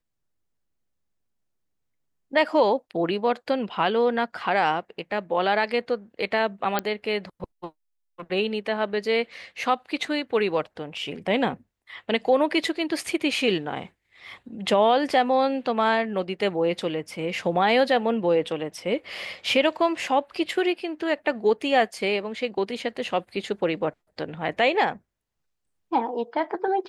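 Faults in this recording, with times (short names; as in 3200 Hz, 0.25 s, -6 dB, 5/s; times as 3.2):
6.79 pop -9 dBFS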